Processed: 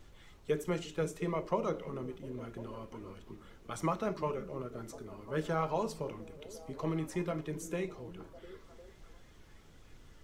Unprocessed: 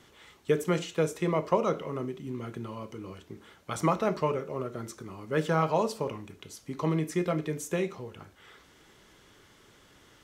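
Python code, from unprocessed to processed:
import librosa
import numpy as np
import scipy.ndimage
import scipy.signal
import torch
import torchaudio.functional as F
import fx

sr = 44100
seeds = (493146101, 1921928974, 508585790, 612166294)

y = fx.spec_quant(x, sr, step_db=15)
y = fx.echo_stepped(y, sr, ms=351, hz=220.0, octaves=0.7, feedback_pct=70, wet_db=-10.5)
y = fx.dmg_noise_colour(y, sr, seeds[0], colour='brown', level_db=-49.0)
y = y * 10.0 ** (-6.5 / 20.0)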